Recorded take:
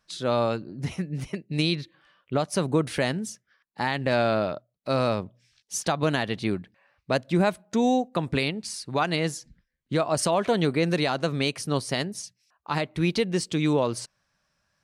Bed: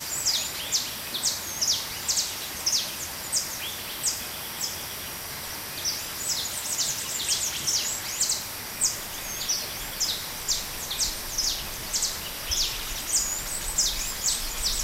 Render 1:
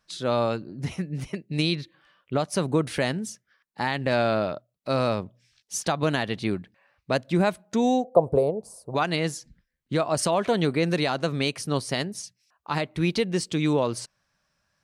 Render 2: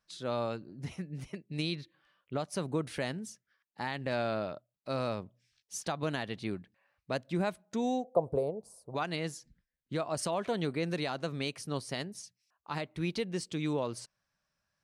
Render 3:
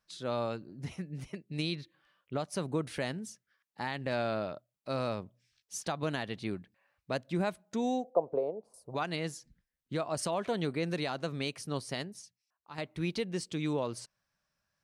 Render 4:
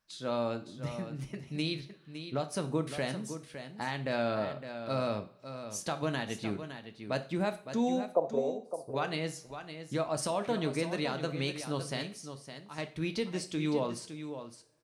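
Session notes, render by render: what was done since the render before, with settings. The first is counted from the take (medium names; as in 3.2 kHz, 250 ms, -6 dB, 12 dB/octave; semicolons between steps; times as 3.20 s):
8.04–8.95 s: FFT filter 120 Hz 0 dB, 280 Hz -5 dB, 490 Hz +14 dB, 690 Hz +12 dB, 1.1 kHz -2 dB, 1.8 kHz -28 dB, 3.3 kHz -26 dB, 5.5 kHz -18 dB, 10 kHz -5 dB
trim -9.5 dB
8.10–8.74 s: three-band isolator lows -18 dB, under 220 Hz, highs -22 dB, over 3.2 kHz; 11.98–12.78 s: fade out quadratic, to -10 dB
on a send: delay 561 ms -10 dB; on the sum: two-slope reverb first 0.39 s, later 2.2 s, from -26 dB, DRR 7.5 dB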